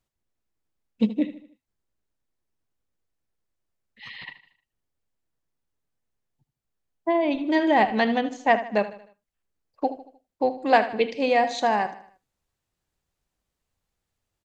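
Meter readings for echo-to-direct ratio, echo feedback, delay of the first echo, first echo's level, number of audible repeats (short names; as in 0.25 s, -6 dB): -13.0 dB, 44%, 77 ms, -14.0 dB, 3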